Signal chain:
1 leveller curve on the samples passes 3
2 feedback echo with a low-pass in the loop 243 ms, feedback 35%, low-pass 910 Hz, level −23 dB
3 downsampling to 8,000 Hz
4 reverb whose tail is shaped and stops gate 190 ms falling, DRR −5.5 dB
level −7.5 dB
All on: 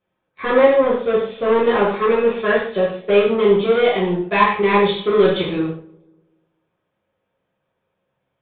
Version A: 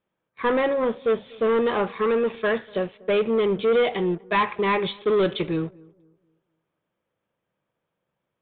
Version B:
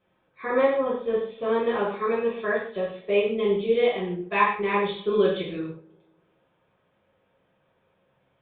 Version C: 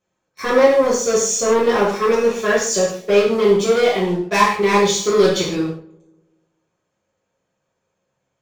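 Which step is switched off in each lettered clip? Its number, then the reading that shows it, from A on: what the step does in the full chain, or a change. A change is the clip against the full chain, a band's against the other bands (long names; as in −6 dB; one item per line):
4, change in integrated loudness −6.5 LU
1, change in crest factor +1.5 dB
3, 4 kHz band +3.5 dB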